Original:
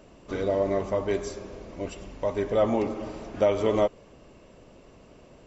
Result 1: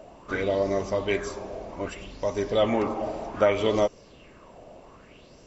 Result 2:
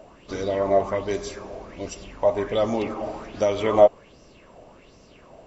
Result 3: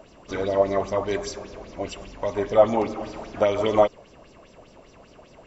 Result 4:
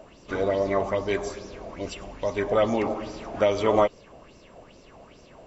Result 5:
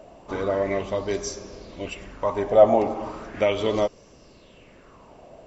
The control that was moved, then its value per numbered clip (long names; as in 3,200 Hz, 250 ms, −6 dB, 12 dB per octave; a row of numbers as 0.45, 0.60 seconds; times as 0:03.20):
auto-filter bell, speed: 0.64, 1.3, 5, 2.4, 0.37 Hertz